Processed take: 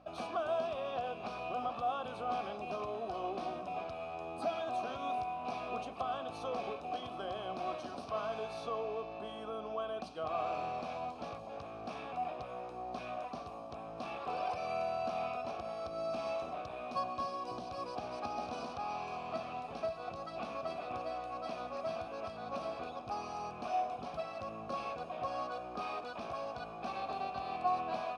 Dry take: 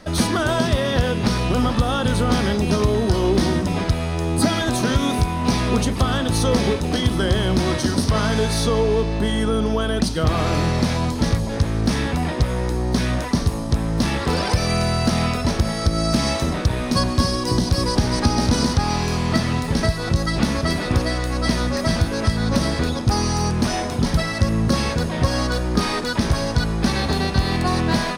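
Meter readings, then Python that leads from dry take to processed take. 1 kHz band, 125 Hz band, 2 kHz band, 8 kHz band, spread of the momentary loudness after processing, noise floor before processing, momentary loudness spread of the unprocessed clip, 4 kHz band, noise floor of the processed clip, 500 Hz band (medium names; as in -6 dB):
-10.5 dB, -34.5 dB, -21.0 dB, -32.5 dB, 7 LU, -25 dBFS, 3 LU, -25.0 dB, -46 dBFS, -15.0 dB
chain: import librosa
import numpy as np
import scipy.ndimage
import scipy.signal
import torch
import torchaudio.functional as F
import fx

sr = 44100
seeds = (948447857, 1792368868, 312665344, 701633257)

y = fx.add_hum(x, sr, base_hz=60, snr_db=11)
y = fx.vowel_filter(y, sr, vowel='a')
y = y * librosa.db_to_amplitude(-4.5)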